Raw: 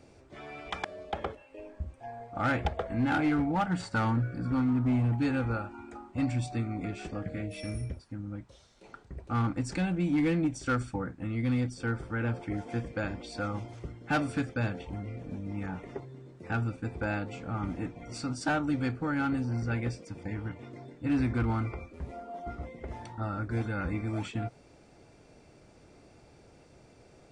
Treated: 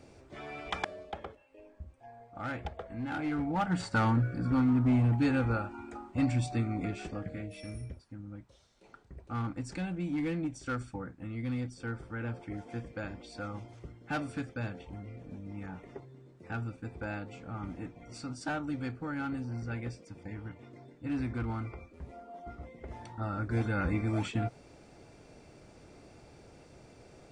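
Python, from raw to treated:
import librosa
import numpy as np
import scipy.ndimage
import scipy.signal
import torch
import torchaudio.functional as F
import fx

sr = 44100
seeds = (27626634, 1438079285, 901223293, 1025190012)

y = fx.gain(x, sr, db=fx.line((0.86, 1.0), (1.26, -9.0), (3.08, -9.0), (3.82, 1.0), (6.83, 1.0), (7.6, -6.0), (22.61, -6.0), (23.74, 2.0)))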